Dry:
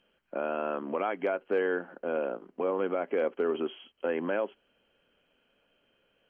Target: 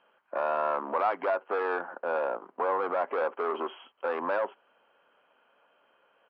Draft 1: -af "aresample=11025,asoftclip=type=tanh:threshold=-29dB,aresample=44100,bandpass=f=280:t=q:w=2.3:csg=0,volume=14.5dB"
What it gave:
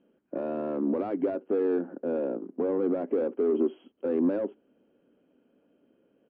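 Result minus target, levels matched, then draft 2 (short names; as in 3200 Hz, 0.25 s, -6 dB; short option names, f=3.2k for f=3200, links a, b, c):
1000 Hz band -14.5 dB
-af "aresample=11025,asoftclip=type=tanh:threshold=-29dB,aresample=44100,bandpass=f=1k:t=q:w=2.3:csg=0,volume=14.5dB"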